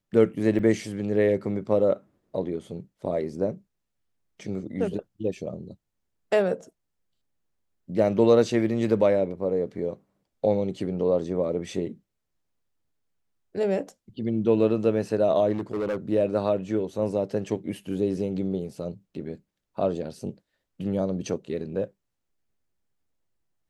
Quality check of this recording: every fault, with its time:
0.59–0.6 gap 5.4 ms
15.52–15.97 clipped -24 dBFS

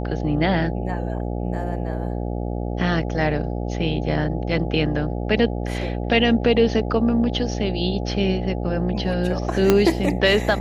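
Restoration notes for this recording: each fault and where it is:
buzz 60 Hz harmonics 14 -26 dBFS
9.7 pop -2 dBFS

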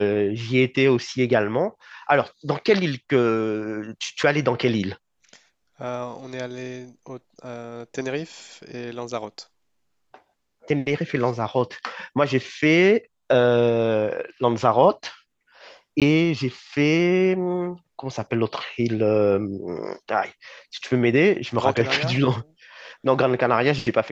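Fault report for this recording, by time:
16–16.02 gap 17 ms

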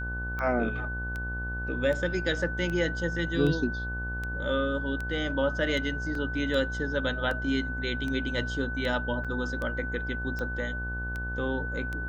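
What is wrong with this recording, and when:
buzz 60 Hz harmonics 20 -35 dBFS
tick 78 rpm -22 dBFS
tone 1500 Hz -34 dBFS
6.15 gap 2.7 ms
9.24–9.25 gap 6.7 ms

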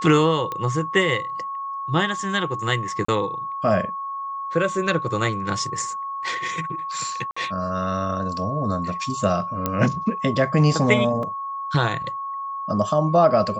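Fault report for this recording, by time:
tone 1100 Hz -27 dBFS
0.52 pop -15 dBFS
3.05–3.08 gap 34 ms
7.31–7.37 gap 55 ms
9.66 pop -8 dBFS
11.23 gap 2.5 ms

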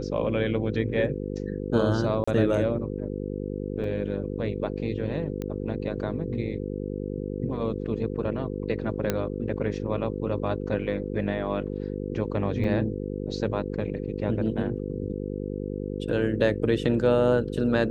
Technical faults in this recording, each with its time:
buzz 50 Hz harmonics 10 -32 dBFS
2.24–2.27 gap 35 ms
3.84 gap 2.5 ms
5.42 pop -20 dBFS
9.1 pop -10 dBFS
12.64 gap 4.2 ms

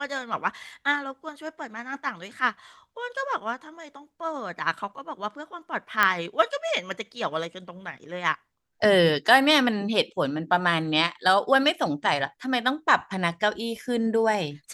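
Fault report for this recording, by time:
6.03 pop -6 dBFS

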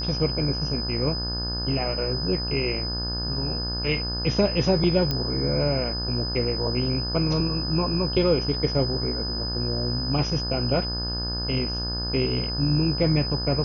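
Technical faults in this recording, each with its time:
buzz 60 Hz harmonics 29 -31 dBFS
tone 5000 Hz -29 dBFS
5.11 pop -12 dBFS

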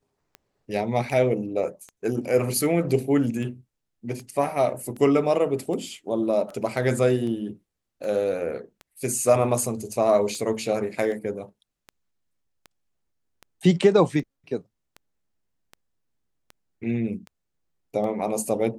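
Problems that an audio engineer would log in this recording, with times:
tick 78 rpm -25 dBFS

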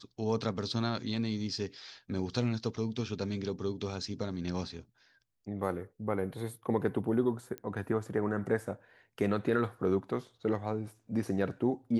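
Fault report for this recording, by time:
7.58 pop -25 dBFS

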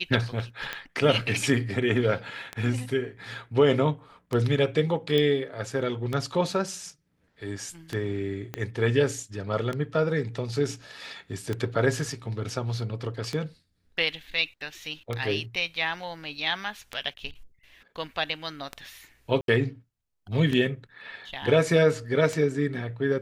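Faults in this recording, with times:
tick 33 1/3 rpm -16 dBFS
5.18 pop -14 dBFS
8.54 pop -17 dBFS
19.41–19.48 gap 72 ms

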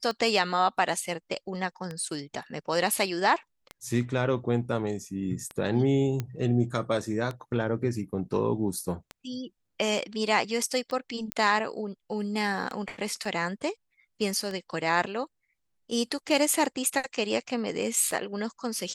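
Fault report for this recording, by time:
tick 33 1/3 rpm -21 dBFS
6.2 pop -17 dBFS
11.32 pop -12 dBFS
13.25 gap 3.7 ms

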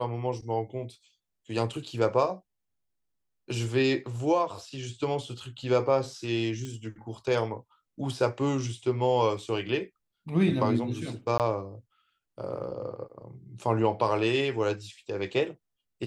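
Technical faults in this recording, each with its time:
6.65 pop -25 dBFS
11.38–11.4 gap 18 ms

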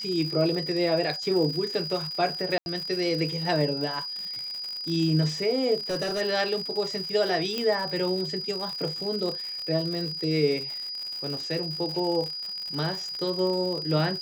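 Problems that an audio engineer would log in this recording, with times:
crackle 130/s -32 dBFS
tone 4900 Hz -32 dBFS
2.58–2.66 gap 81 ms
5.76–6.22 clipped -24 dBFS
7.58 pop -15 dBFS

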